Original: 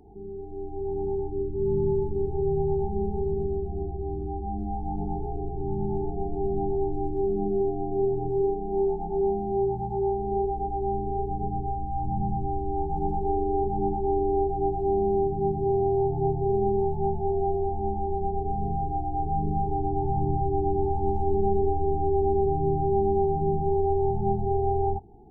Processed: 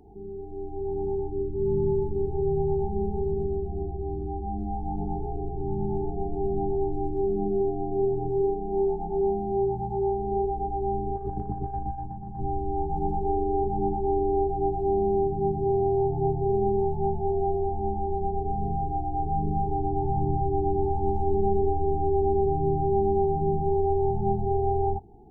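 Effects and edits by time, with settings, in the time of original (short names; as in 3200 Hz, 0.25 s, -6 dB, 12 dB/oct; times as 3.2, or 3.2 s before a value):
11.16–12.4 negative-ratio compressor -31 dBFS, ratio -0.5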